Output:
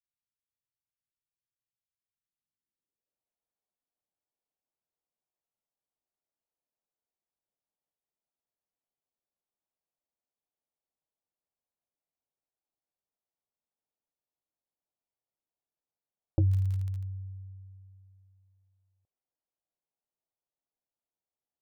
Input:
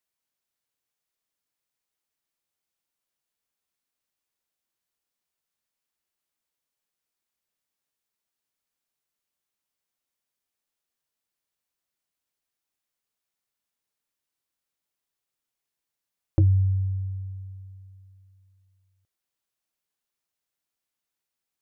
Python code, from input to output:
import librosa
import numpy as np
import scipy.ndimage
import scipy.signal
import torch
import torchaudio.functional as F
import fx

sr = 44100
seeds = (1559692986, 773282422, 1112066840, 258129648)

y = fx.filter_sweep_lowpass(x, sr, from_hz=120.0, to_hz=740.0, start_s=2.17, end_s=3.25, q=1.6)
y = fx.dmg_crackle(y, sr, seeds[0], per_s=59.0, level_db=-29.0, at=(16.48, 17.02), fade=0.02)
y = y * 10.0 ** (-6.0 / 20.0)